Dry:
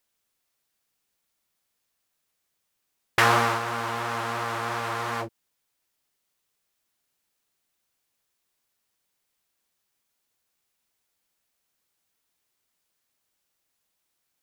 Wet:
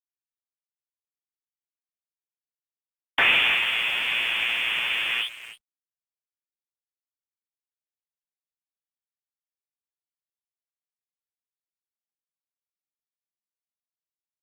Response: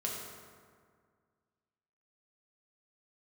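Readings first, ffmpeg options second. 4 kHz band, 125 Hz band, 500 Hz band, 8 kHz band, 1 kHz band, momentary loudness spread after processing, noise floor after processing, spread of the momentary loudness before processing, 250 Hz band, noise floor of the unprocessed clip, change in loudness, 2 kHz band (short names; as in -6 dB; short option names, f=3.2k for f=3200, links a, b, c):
+11.0 dB, under -15 dB, -10.5 dB, -8.0 dB, -9.5 dB, 11 LU, under -85 dBFS, 11 LU, -11.5 dB, -78 dBFS, +4.0 dB, +6.5 dB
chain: -filter_complex "[0:a]asplit=2[a][b];[b]adelay=310,highpass=300,lowpass=3.4k,asoftclip=type=hard:threshold=-12dB,volume=-14dB[c];[a][c]amix=inputs=2:normalize=0,aeval=exprs='(tanh(7.94*val(0)+0.1)-tanh(0.1))/7.94':c=same,asplit=2[d][e];[1:a]atrim=start_sample=2205,afade=t=out:st=0.32:d=0.01,atrim=end_sample=14553[f];[e][f]afir=irnorm=-1:irlink=0,volume=-15.5dB[g];[d][g]amix=inputs=2:normalize=0,lowpass=f=3.1k:t=q:w=0.5098,lowpass=f=3.1k:t=q:w=0.6013,lowpass=f=3.1k:t=q:w=0.9,lowpass=f=3.1k:t=q:w=2.563,afreqshift=-3600,aeval=exprs='sgn(val(0))*max(abs(val(0))-0.00398,0)':c=same,volume=6dB" -ar 48000 -c:a libopus -b:a 32k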